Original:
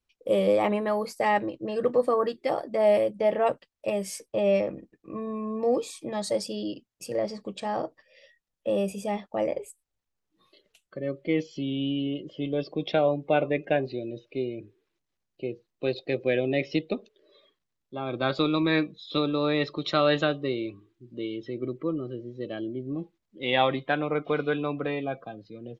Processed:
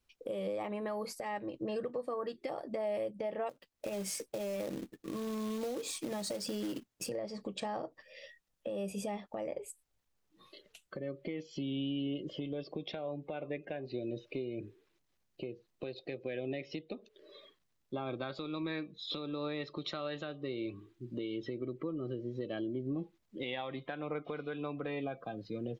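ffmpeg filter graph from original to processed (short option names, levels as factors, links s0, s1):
-filter_complex "[0:a]asettb=1/sr,asplit=3[s0][s1][s2];[s0]atrim=end=3.494[s3];[s1]atrim=start=3.49:end=7.09,asetpts=PTS-STARTPTS,afade=t=in:d=0.004:c=qsin,afade=t=out:st=3.596:d=0.004:c=qsin,equalizer=f=290:t=o:w=1.7:g=4,acompressor=threshold=0.0158:ratio=6:attack=3.2:release=140:knee=1:detection=peak,acrusher=bits=3:mode=log:mix=0:aa=0.000001[s4];[s2]atrim=start=7.086[s5];[s3][s4]acrossfade=d=0.004:c1=hsin:c2=qsin[s6];[s6][s5]acrossfade=d=0.004:c1=qsin:c2=hsin,acompressor=threshold=0.0141:ratio=6,alimiter=level_in=2.51:limit=0.0631:level=0:latency=1:release=247,volume=0.398,volume=1.58"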